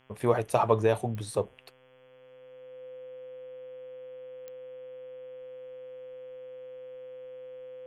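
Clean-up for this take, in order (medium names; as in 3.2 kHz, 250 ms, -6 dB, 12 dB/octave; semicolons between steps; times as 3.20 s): de-click; de-hum 130 Hz, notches 26; band-stop 510 Hz, Q 30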